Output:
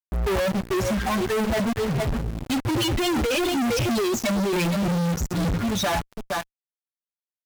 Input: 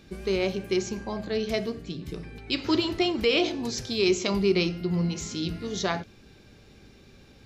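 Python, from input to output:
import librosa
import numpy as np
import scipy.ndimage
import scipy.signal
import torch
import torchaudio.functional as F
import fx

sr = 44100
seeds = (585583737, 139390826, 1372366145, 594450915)

y = fx.bin_expand(x, sr, power=3.0)
y = scipy.signal.sosfilt(scipy.signal.butter(2, 2600.0, 'lowpass', fs=sr, output='sos'), y)
y = y + 10.0 ** (-18.0 / 20.0) * np.pad(y, (int(463 * sr / 1000.0), 0))[:len(y)]
y = fx.quant_float(y, sr, bits=2)
y = fx.over_compress(y, sr, threshold_db=-36.0, ratio=-1.0)
y = fx.low_shelf(y, sr, hz=220.0, db=9.5)
y = fx.fuzz(y, sr, gain_db=57.0, gate_db=-51.0)
y = y * librosa.db_to_amplitude(-8.5)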